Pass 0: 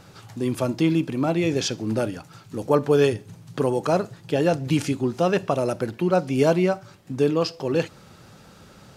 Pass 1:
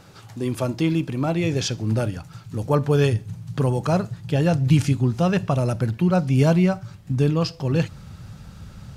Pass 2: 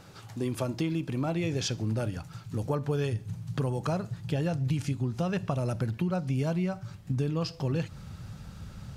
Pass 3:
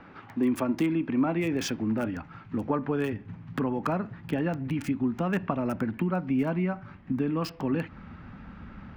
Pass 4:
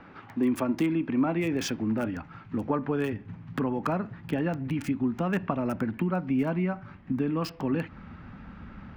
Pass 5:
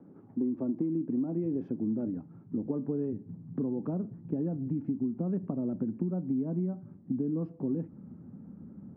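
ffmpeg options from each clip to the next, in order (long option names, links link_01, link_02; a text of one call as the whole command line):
ffmpeg -i in.wav -af "asubboost=boost=8:cutoff=130" out.wav
ffmpeg -i in.wav -af "acompressor=threshold=-23dB:ratio=6,volume=-3dB" out.wav
ffmpeg -i in.wav -filter_complex "[0:a]equalizer=frequency=125:width_type=o:width=1:gain=-11,equalizer=frequency=250:width_type=o:width=1:gain=12,equalizer=frequency=500:width_type=o:width=1:gain=-3,equalizer=frequency=1000:width_type=o:width=1:gain=5,equalizer=frequency=2000:width_type=o:width=1:gain=7,equalizer=frequency=4000:width_type=o:width=1:gain=-5,acrossover=split=290|870|3500[link_01][link_02][link_03][link_04];[link_04]acrusher=bits=6:mix=0:aa=0.000001[link_05];[link_01][link_02][link_03][link_05]amix=inputs=4:normalize=0" out.wav
ffmpeg -i in.wav -af anull out.wav
ffmpeg -i in.wav -af "asuperpass=centerf=240:order=4:qfactor=0.78,acompressor=threshold=-27dB:ratio=6" out.wav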